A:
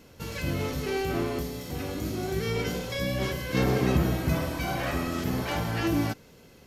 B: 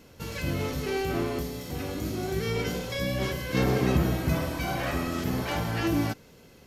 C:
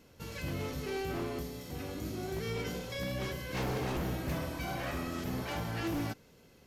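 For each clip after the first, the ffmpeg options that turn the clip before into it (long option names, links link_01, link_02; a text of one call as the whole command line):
ffmpeg -i in.wav -af anull out.wav
ffmpeg -i in.wav -af "aeval=exprs='0.0841*(abs(mod(val(0)/0.0841+3,4)-2)-1)':channel_layout=same,volume=-7dB" out.wav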